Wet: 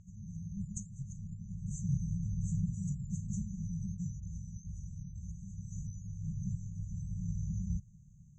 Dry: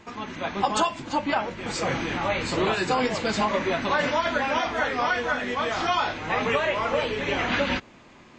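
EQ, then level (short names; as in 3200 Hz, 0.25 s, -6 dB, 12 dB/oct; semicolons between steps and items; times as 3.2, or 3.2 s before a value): brick-wall FIR band-stop 190–5900 Hz; air absorption 160 m; +3.0 dB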